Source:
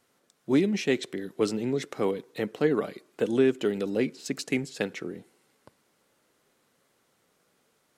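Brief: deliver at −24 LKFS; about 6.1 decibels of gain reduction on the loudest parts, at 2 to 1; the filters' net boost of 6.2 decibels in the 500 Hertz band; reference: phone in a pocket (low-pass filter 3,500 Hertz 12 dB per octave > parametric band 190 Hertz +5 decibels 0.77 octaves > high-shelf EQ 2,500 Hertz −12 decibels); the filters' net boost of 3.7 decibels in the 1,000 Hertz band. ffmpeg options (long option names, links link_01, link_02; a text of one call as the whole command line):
ffmpeg -i in.wav -af "equalizer=frequency=500:width_type=o:gain=7,equalizer=frequency=1000:width_type=o:gain=4.5,acompressor=threshold=-24dB:ratio=2,lowpass=3500,equalizer=frequency=190:width_type=o:width=0.77:gain=5,highshelf=frequency=2500:gain=-12,volume=3.5dB" out.wav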